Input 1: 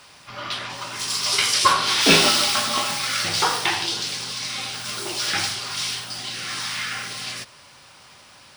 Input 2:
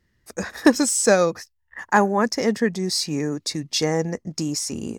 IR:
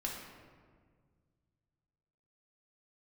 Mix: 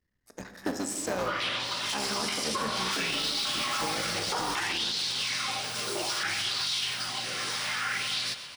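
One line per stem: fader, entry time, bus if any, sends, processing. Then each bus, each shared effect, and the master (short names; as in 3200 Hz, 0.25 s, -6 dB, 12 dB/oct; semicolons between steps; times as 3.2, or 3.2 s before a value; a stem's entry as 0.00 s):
-3.5 dB, 0.90 s, no send, echo send -13 dB, compressor, threshold -24 dBFS, peak gain reduction 13.5 dB; LFO bell 0.61 Hz 460–4100 Hz +10 dB
-15.5 dB, 0.00 s, send -3.5 dB, no echo send, cycle switcher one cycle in 3, muted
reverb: on, RT60 1.8 s, pre-delay 3 ms
echo: feedback echo 0.122 s, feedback 60%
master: limiter -20.5 dBFS, peak gain reduction 8.5 dB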